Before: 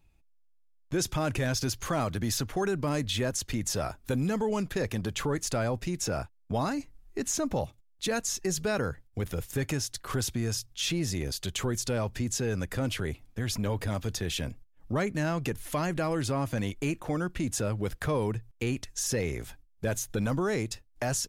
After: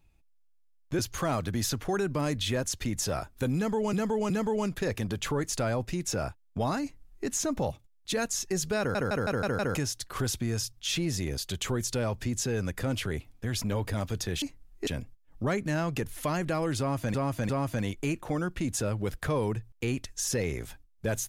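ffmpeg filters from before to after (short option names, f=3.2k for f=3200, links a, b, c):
-filter_complex "[0:a]asplit=14[a][b][c][d][e][f][g][h][i][j][k][l][m][n];[a]atrim=end=0.992[o];[b]atrim=start=1.668:end=4.612[p];[c]atrim=start=4.238:end=4.612[q];[d]atrim=start=4.238:end=8.892[r];[e]atrim=start=8.728:end=8.892[s];[f]atrim=start=8.728:end=8.892[t];[g]atrim=start=8.728:end=8.892[u];[h]atrim=start=8.728:end=8.892[v];[i]atrim=start=8.728:end=8.892[w];[j]atrim=start=9.688:end=14.362[x];[k]atrim=start=6.758:end=7.212[y];[l]atrim=start=14.358:end=16.632[z];[m]atrim=start=16.278:end=16.632[aa];[n]atrim=start=16.278[ab];[o][p]acrossfade=d=0.004:c1=hsin:c2=hsin[ac];[ac][q]acrossfade=d=0.004:c1=hsin:c2=hsin[ad];[ad][r]acrossfade=d=0.004:c1=hsin:c2=hsin[ae];[ae][s]acrossfade=d=0.004:c1=hsin:c2=hsin[af];[af][t]acrossfade=d=0.004:c1=hsin:c2=hsin[ag];[ag][u]acrossfade=d=0.004:c1=hsin:c2=hsin[ah];[ah][v]acrossfade=d=0.004:c1=hsin:c2=hsin[ai];[ai][w]acrossfade=d=0.004:c1=hsin:c2=hsin[aj];[aj][x]acrossfade=d=0.004:c1=hsin:c2=hsin[ak];[ak][y]acrossfade=d=0.004:c1=hsin:c2=hsin[al];[al][z]acrossfade=d=0.004:c1=hsin:c2=hsin[am];[am][aa]acrossfade=d=0.004:c1=hsin:c2=hsin[an];[an][ab]acrossfade=d=0.004:c1=hsin:c2=hsin"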